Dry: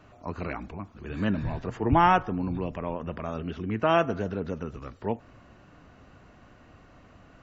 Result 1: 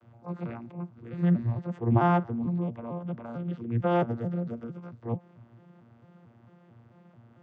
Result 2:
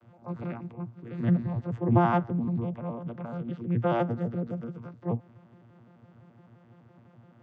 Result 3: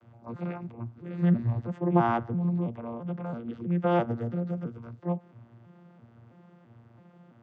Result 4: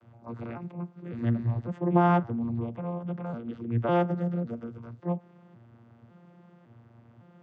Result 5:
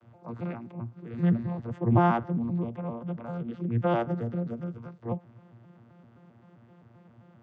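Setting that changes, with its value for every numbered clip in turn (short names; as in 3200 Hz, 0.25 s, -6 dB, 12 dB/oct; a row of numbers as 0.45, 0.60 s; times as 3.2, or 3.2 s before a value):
arpeggiated vocoder, a note every: 223, 85, 332, 554, 131 ms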